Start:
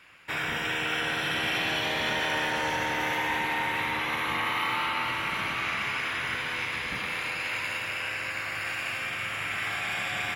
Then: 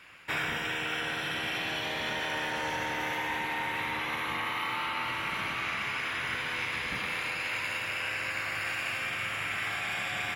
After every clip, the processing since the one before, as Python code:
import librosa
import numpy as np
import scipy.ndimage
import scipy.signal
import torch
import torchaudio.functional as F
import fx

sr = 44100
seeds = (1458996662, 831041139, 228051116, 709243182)

y = fx.rider(x, sr, range_db=10, speed_s=0.5)
y = F.gain(torch.from_numpy(y), -3.0).numpy()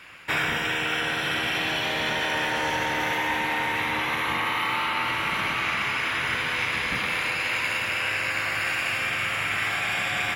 y = x + 10.0 ** (-12.5 / 20.0) * np.pad(x, (int(961 * sr / 1000.0), 0))[:len(x)]
y = F.gain(torch.from_numpy(y), 6.5).numpy()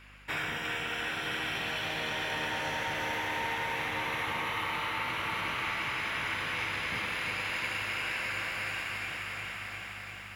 y = fx.fade_out_tail(x, sr, length_s=2.17)
y = fx.add_hum(y, sr, base_hz=50, snr_db=21)
y = fx.echo_crushed(y, sr, ms=350, feedback_pct=80, bits=9, wet_db=-7)
y = F.gain(torch.from_numpy(y), -9.0).numpy()